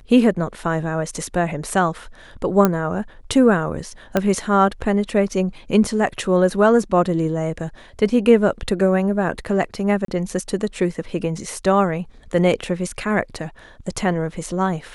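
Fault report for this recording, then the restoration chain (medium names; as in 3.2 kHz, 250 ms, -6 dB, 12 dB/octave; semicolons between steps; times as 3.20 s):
2.65 s: pop -3 dBFS
4.17 s: pop -5 dBFS
10.05–10.08 s: dropout 33 ms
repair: de-click; interpolate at 10.05 s, 33 ms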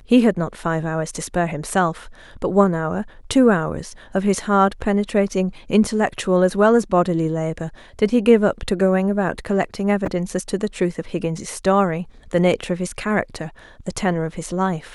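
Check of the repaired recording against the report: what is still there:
4.17 s: pop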